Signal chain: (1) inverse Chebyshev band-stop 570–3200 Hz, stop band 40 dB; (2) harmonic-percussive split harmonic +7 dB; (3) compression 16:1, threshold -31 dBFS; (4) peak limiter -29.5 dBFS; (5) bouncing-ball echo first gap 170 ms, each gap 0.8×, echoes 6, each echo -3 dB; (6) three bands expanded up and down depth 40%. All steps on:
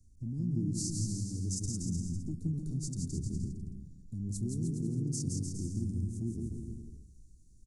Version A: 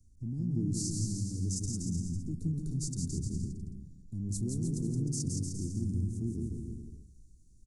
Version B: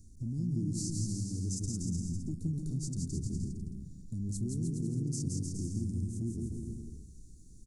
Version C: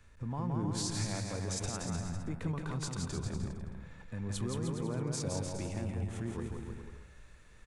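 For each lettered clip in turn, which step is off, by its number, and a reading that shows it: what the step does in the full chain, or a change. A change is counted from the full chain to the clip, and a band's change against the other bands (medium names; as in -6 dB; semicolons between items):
3, mean gain reduction 6.5 dB; 6, momentary loudness spread change -2 LU; 1, 500 Hz band +9.5 dB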